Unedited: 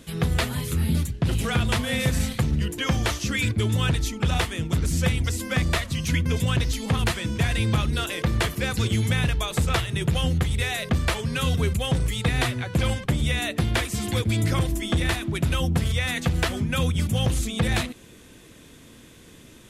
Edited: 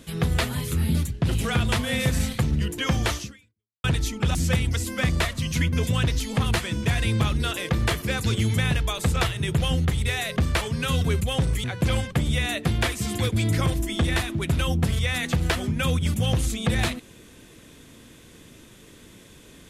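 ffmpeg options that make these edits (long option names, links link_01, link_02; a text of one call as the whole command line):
ffmpeg -i in.wav -filter_complex "[0:a]asplit=4[link_01][link_02][link_03][link_04];[link_01]atrim=end=3.84,asetpts=PTS-STARTPTS,afade=type=out:start_time=3.2:duration=0.64:curve=exp[link_05];[link_02]atrim=start=3.84:end=4.352,asetpts=PTS-STARTPTS,afade=type=in:duration=0.004:curve=hsin[link_06];[link_03]atrim=start=4.878:end=12.172[link_07];[link_04]atrim=start=12.568[link_08];[link_05][link_06]concat=n=2:v=0:a=1[link_09];[link_09][link_07]acrossfade=duration=0.004:curve1=hsin:curve2=hsin[link_10];[link_10][link_08]acrossfade=duration=0.004:curve1=hsin:curve2=hsin" out.wav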